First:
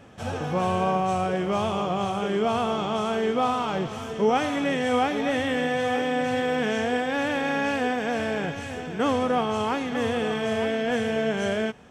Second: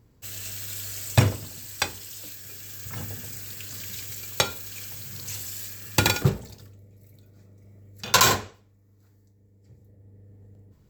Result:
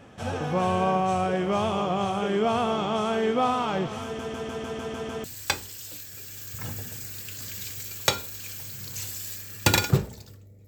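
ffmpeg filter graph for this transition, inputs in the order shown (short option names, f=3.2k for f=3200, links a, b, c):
-filter_complex "[0:a]apad=whole_dur=10.67,atrim=end=10.67,asplit=8[a][b][c][d][e][f][g][h];[a]atrim=end=4.192[i];[b]atrim=start=4.038:end=4.192[j];[c]atrim=start=4.038:end=4.192[k];[d]atrim=start=4.038:end=4.192[l];[e]atrim=start=4.038:end=4.192[m];[f]atrim=start=4.038:end=4.192[n];[g]atrim=start=4.038:end=4.192[o];[h]atrim=start=4.038:end=4.192[p];[1:a]atrim=start=1.558:end=6.99[q];[i][j]acrossfade=d=0.004:c1=hsin:c2=hsin[r];[r][k]acrossfade=d=0.004:c1=hsin:c2=hsin[s];[s][l]acrossfade=d=0.004:c1=hsin:c2=hsin[t];[t][m]acrossfade=d=0.004:c1=hsin:c2=hsin[u];[u][n]acrossfade=d=0.004:c1=hsin:c2=hsin[v];[v][o]acrossfade=d=0.004:c1=hsin:c2=hsin[w];[w][p]acrossfade=d=0.004:c1=hsin:c2=hsin[x];[x][q]acrossfade=d=0.004:c1=hsin:c2=hsin"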